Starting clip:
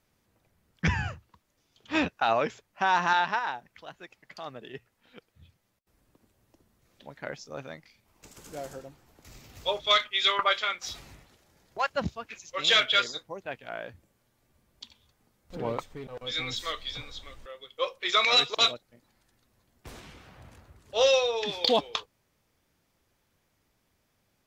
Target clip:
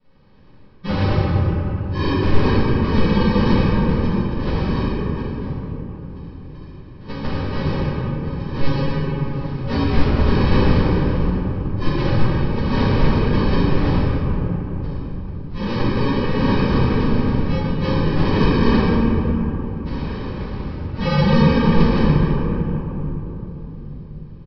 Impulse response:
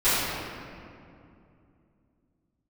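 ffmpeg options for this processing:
-filter_complex "[0:a]lowpass=3100,areverse,acompressor=threshold=0.0178:ratio=6,areverse,flanger=delay=6.4:depth=3.5:regen=63:speed=0.56:shape=sinusoidal,aresample=11025,acrusher=samples=16:mix=1:aa=0.000001,aresample=44100,asplit=2[s0][s1];[s1]adelay=40,volume=0.2[s2];[s0][s2]amix=inputs=2:normalize=0[s3];[1:a]atrim=start_sample=2205,asetrate=23814,aresample=44100[s4];[s3][s4]afir=irnorm=-1:irlink=0,volume=1.5"

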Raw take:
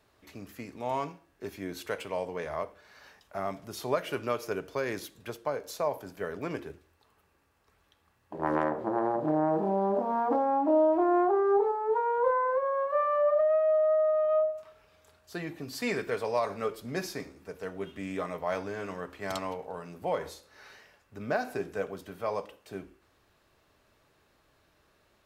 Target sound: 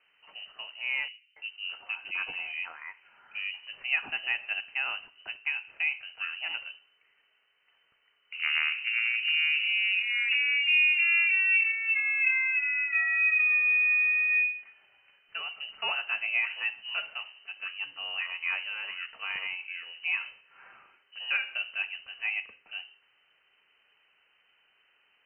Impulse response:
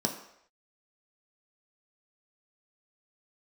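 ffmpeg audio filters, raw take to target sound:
-filter_complex "[0:a]asettb=1/sr,asplit=3[s0][s1][s2];[s0]atrim=end=1.084[s3];[s1]atrim=start=1.08:end=3.54,asetpts=PTS-STARTPTS,afade=t=in:d=0.004:c=qsin,afade=t=out:st=2.456:d=0.004:c=qsin,acrossover=split=1000[s4][s5];[s5]adelay=280[s6];[s4][s6]amix=inputs=2:normalize=0,atrim=end_sample=108486[s7];[s2]atrim=start=3.536[s8];[s3][s7]acrossfade=d=0.004:c1=hsin:c2=qsin[s9];[s9][s8]acrossfade=d=0.004:c1=qsin:c2=hsin,lowpass=f=2600:t=q:w=0.5098,lowpass=f=2600:t=q:w=0.6013,lowpass=f=2600:t=q:w=0.9,lowpass=f=2600:t=q:w=2.563,afreqshift=-3100"

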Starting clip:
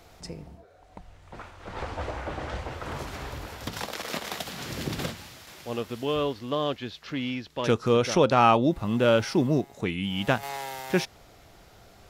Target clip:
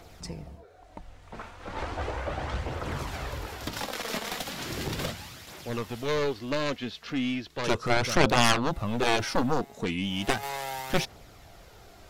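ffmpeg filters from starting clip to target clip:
-af "aeval=exprs='0.473*(cos(1*acos(clip(val(0)/0.473,-1,1)))-cos(1*PI/2))+0.119*(cos(4*acos(clip(val(0)/0.473,-1,1)))-cos(4*PI/2))+0.188*(cos(7*acos(clip(val(0)/0.473,-1,1)))-cos(7*PI/2))':c=same,aphaser=in_gain=1:out_gain=1:delay=4.7:decay=0.34:speed=0.36:type=triangular,volume=0.631"

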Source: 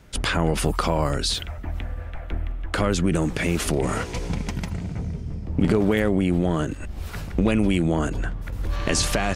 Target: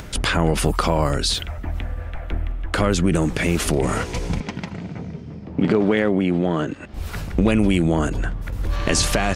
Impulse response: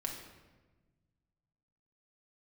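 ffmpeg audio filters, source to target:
-filter_complex "[0:a]acompressor=mode=upward:threshold=0.0355:ratio=2.5,asettb=1/sr,asplit=3[s0][s1][s2];[s0]atrim=end=4.404[s3];[s1]atrim=start=4.4:end=6.94,asetpts=PTS-STARTPTS,afade=t=in:d=0.004:c=qsin,afade=t=out:st=2.536:d=0.004:c=qsin,highpass=160,lowpass=4500[s4];[s2]atrim=start=6.936[s5];[s3][s4]acrossfade=d=0.004:c1=hsin:c2=qsin[s6];[s6][s5]acrossfade=d=0.004:c1=qsin:c2=hsin,volume=1.41"

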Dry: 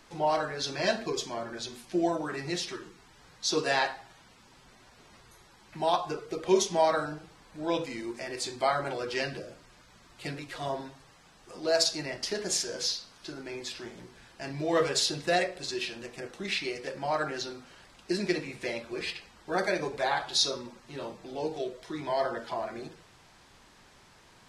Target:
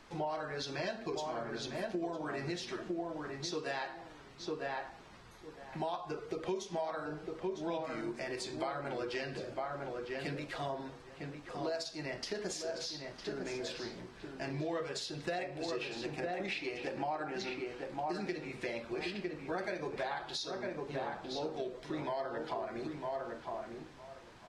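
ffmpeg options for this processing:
-filter_complex "[0:a]asplit=3[s0][s1][s2];[s0]afade=t=out:st=15.37:d=0.02[s3];[s1]equalizer=f=315:t=o:w=0.33:g=8,equalizer=f=800:t=o:w=0.33:g=10,equalizer=f=2500:t=o:w=0.33:g=5,afade=t=in:st=15.37:d=0.02,afade=t=out:st=17.54:d=0.02[s4];[s2]afade=t=in:st=17.54:d=0.02[s5];[s3][s4][s5]amix=inputs=3:normalize=0,asplit=2[s6][s7];[s7]adelay=954,lowpass=f=1800:p=1,volume=0.501,asplit=2[s8][s9];[s9]adelay=954,lowpass=f=1800:p=1,volume=0.16,asplit=2[s10][s11];[s11]adelay=954,lowpass=f=1800:p=1,volume=0.16[s12];[s6][s8][s10][s12]amix=inputs=4:normalize=0,acompressor=threshold=0.02:ratio=8,highshelf=f=5900:g=-10.5"

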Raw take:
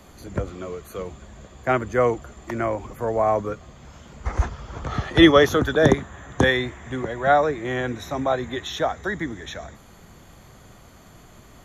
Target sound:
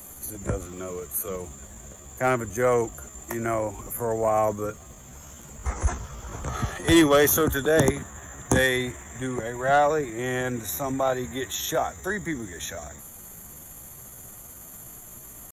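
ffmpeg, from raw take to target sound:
-af "acontrast=87,atempo=0.75,aexciter=amount=7:drive=8.5:freq=6900,volume=0.355"

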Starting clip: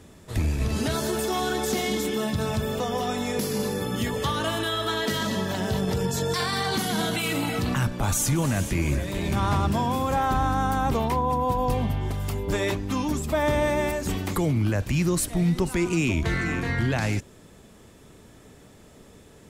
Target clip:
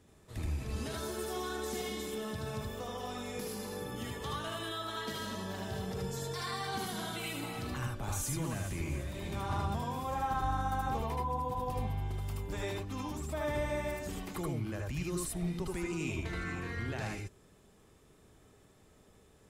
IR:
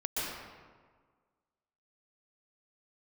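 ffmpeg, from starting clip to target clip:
-filter_complex "[1:a]atrim=start_sample=2205,afade=t=out:st=0.18:d=0.01,atrim=end_sample=8379,asetrate=70560,aresample=44100[s0];[0:a][s0]afir=irnorm=-1:irlink=0,volume=0.398"

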